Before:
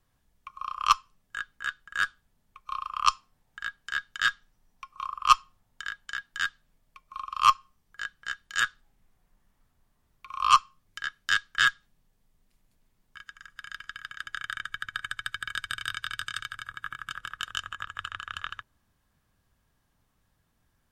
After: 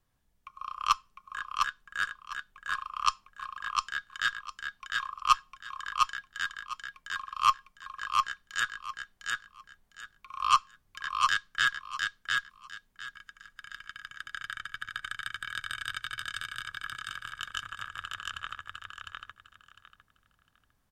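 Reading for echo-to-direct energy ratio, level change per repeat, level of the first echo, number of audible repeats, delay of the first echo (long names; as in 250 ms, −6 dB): −3.0 dB, −13.0 dB, −3.0 dB, 3, 704 ms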